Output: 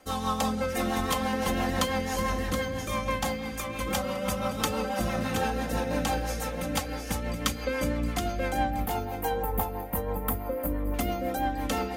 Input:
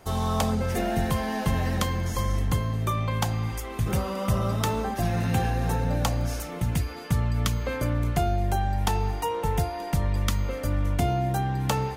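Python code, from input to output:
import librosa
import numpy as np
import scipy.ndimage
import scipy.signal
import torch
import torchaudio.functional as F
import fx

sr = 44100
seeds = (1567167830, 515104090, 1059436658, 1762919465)

y = fx.curve_eq(x, sr, hz=(950.0, 5900.0, 14000.0), db=(0, -24, 12), at=(8.7, 10.94))
y = fx.echo_feedback(y, sr, ms=723, feedback_pct=26, wet_db=-3.0)
y = fx.rotary(y, sr, hz=6.0)
y = fx.low_shelf(y, sr, hz=170.0, db=-11.5)
y = y + 0.82 * np.pad(y, (int(3.8 * sr / 1000.0), 0))[:len(y)]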